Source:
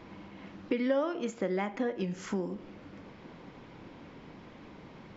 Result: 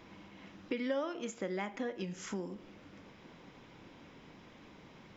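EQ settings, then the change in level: treble shelf 2.5 kHz +9 dB; band-stop 4.4 kHz, Q 14; -6.5 dB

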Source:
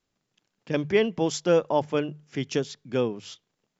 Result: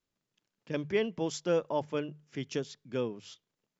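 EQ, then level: band-stop 760 Hz, Q 12; -7.5 dB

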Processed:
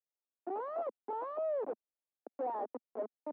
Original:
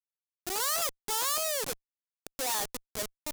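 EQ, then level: steep high-pass 230 Hz 48 dB/octave; four-pole ladder low-pass 940 Hz, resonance 30%; +5.5 dB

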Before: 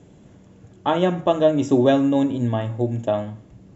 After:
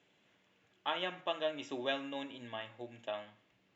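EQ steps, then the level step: band-pass filter 2.7 kHz, Q 1.5; distance through air 57 m; -2.5 dB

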